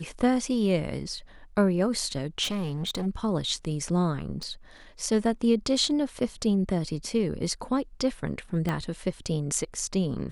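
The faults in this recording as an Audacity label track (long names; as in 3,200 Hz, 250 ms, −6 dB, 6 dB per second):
2.430000	3.070000	clipping −26.5 dBFS
4.430000	4.430000	click −25 dBFS
8.690000	8.690000	click −15 dBFS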